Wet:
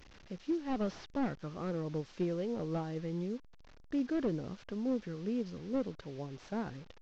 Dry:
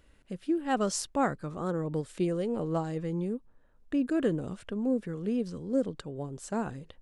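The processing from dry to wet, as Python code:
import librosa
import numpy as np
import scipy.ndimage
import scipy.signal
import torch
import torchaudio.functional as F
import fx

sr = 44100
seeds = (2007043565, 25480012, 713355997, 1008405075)

y = fx.delta_mod(x, sr, bps=32000, step_db=-45.5)
y = F.gain(torch.from_numpy(y), -5.0).numpy()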